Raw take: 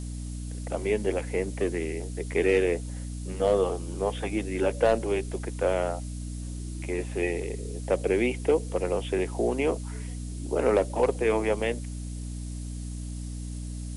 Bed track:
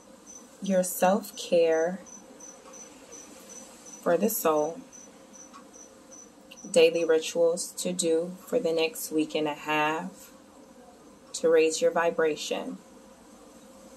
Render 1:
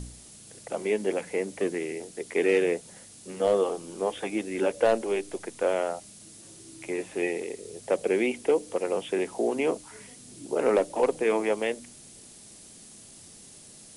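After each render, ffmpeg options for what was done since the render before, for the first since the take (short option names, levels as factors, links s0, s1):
-af "bandreject=f=60:t=h:w=4,bandreject=f=120:t=h:w=4,bandreject=f=180:t=h:w=4,bandreject=f=240:t=h:w=4,bandreject=f=300:t=h:w=4"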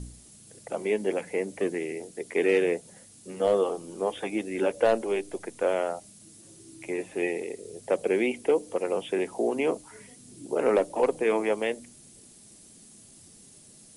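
-af "afftdn=nr=6:nf=-50"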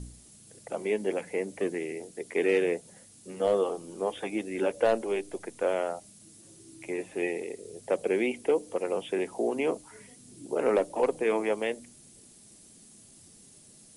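-af "volume=0.794"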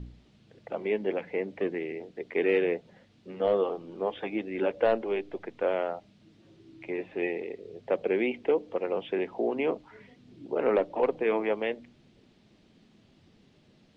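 -af "lowpass=f=3600:w=0.5412,lowpass=f=3600:w=1.3066"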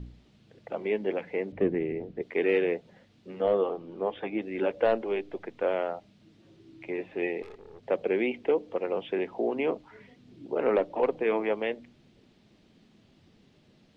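-filter_complex "[0:a]asettb=1/sr,asplit=3[s0][s1][s2];[s0]atrim=end=1.524[s3];[s1]atrim=start=1.52:end=2.22,asetpts=PTS-STARTPTS,afade=t=in:d=0.004:c=qsin,afade=t=out:st=0.696:d=0.004:c=qsin,aemphasis=mode=reproduction:type=riaa[s4];[s2]atrim=start=2.216[s5];[s3][s4]acrossfade=d=0.004:c1=hsin:c2=qsin[s6];[s6][s5]acrossfade=d=0.004:c1=qsin:c2=hsin,asettb=1/sr,asplit=3[s7][s8][s9];[s7]atrim=end=3.424[s10];[s8]atrim=start=3.42:end=4.42,asetpts=PTS-STARTPTS,afade=t=in:d=0.004:c=qsin,afade=t=out:st=0.996:d=0.004:c=qsin,aemphasis=mode=reproduction:type=50fm[s11];[s9]atrim=start=4.416[s12];[s10][s11]acrossfade=d=0.004:c1=hsin:c2=qsin[s13];[s13][s12]acrossfade=d=0.004:c1=qsin:c2=hsin,asettb=1/sr,asplit=3[s14][s15][s16];[s14]atrim=end=7.424[s17];[s15]atrim=start=7.42:end=7.83,asetpts=PTS-STARTPTS,afade=t=in:d=0.004:c=qsin,afade=t=out:st=0.406:d=0.004:c=qsin,aeval=exprs='(tanh(141*val(0)+0.6)-tanh(0.6))/141':c=same[s18];[s16]atrim=start=7.826[s19];[s17][s18]acrossfade=d=0.004:c1=hsin:c2=qsin[s20];[s20][s19]acrossfade=d=0.004:c1=qsin:c2=hsin"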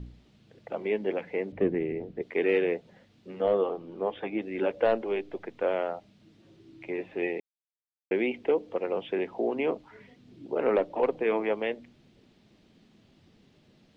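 -filter_complex "[0:a]asplit=3[s0][s1][s2];[s0]atrim=end=7.4,asetpts=PTS-STARTPTS,afade=t=out:st=7.396:d=0.004:c=hsin[s3];[s1]atrim=start=7.4:end=8.11,asetpts=PTS-STARTPTS,volume=0[s4];[s2]atrim=start=8.11,asetpts=PTS-STARTPTS,afade=t=in:d=0.004:c=hsin[s5];[s3][s4][s5]concat=n=3:v=0:a=1"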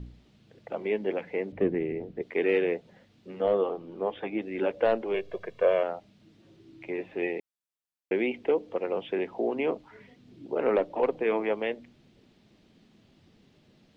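-filter_complex "[0:a]asettb=1/sr,asplit=3[s0][s1][s2];[s0]atrim=end=5.144[s3];[s1]atrim=start=5.14:end=5.83,asetpts=PTS-STARTPTS,afade=t=in:d=0.004:c=qsin,afade=t=out:st=0.686:d=0.004:c=qsin,aecho=1:1:1.8:0.89,atrim=end_sample=30429[s4];[s2]atrim=start=5.826[s5];[s3][s4]acrossfade=d=0.004:c1=hsin:c2=qsin[s6];[s6][s5]acrossfade=d=0.004:c1=qsin:c2=hsin"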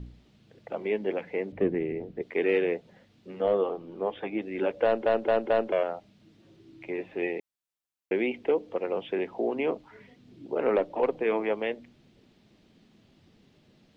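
-filter_complex "[0:a]asplit=5[s0][s1][s2][s3][s4];[s0]atrim=end=5.062[s5];[s1]atrim=start=4.838:end=5.062[s6];[s2]atrim=start=4.838:end=5.062[s7];[s3]atrim=start=4.838:end=5.062[s8];[s4]atrim=start=5.718[s9];[s5][s6]acrossfade=d=0.004:c1=hsin:c2=hsin[s10];[s10][s7]acrossfade=d=0.004:c1=hsin:c2=hsin[s11];[s11][s8]acrossfade=d=0.004:c1=hsin:c2=hsin[s12];[s12][s9]acrossfade=d=0.004:c1=hsin:c2=hsin"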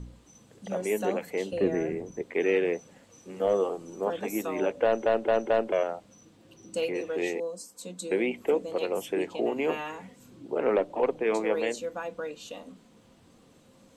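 -filter_complex "[1:a]volume=0.299[s0];[0:a][s0]amix=inputs=2:normalize=0"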